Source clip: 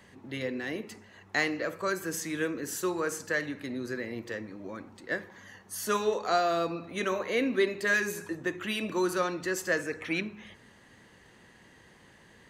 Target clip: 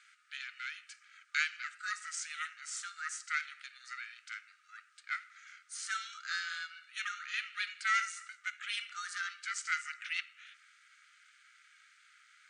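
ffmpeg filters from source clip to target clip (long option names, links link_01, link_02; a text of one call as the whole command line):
ffmpeg -i in.wav -af "aeval=exprs='val(0)*sin(2*PI*310*n/s)':channel_layout=same,acrusher=bits=11:mix=0:aa=0.000001,afftfilt=real='re*between(b*sr/4096,1200,9500)':imag='im*between(b*sr/4096,1200,9500)':win_size=4096:overlap=0.75" out.wav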